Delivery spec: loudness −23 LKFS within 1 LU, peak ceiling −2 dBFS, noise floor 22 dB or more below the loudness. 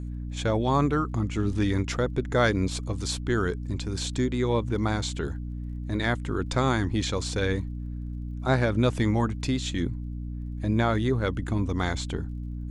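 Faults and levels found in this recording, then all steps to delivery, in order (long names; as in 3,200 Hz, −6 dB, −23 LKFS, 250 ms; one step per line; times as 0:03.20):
crackle rate 27 per second; mains hum 60 Hz; hum harmonics up to 300 Hz; level of the hum −31 dBFS; integrated loudness −27.5 LKFS; sample peak −10.5 dBFS; target loudness −23.0 LKFS
→ click removal
hum removal 60 Hz, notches 5
level +4.5 dB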